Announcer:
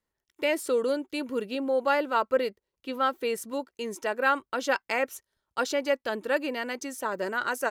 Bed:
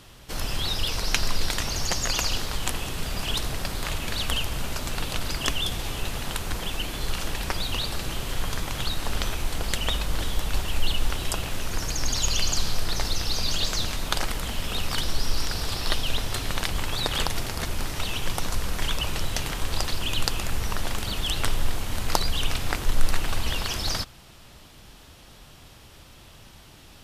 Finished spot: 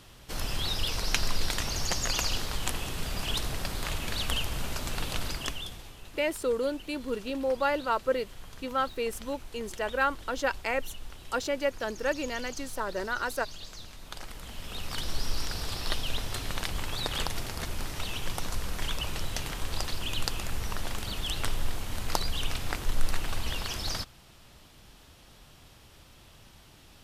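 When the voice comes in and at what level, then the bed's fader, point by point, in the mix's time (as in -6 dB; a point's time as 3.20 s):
5.75 s, -2.5 dB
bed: 5.24 s -3.5 dB
5.97 s -18 dB
13.94 s -18 dB
15.15 s -5.5 dB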